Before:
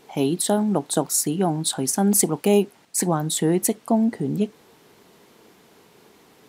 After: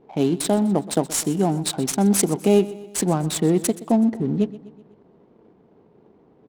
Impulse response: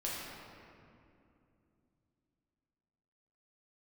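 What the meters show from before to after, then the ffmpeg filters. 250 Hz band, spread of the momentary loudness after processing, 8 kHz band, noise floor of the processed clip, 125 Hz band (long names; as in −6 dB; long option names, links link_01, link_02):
+2.0 dB, 5 LU, −2.5 dB, −56 dBFS, +2.0 dB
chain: -filter_complex "[0:a]equalizer=frequency=1600:width=0.8:gain=-6,adynamicsmooth=sensitivity=7.5:basefreq=750,asplit=2[link_01][link_02];[link_02]aecho=0:1:125|250|375|500:0.133|0.0693|0.0361|0.0188[link_03];[link_01][link_03]amix=inputs=2:normalize=0,volume=2dB"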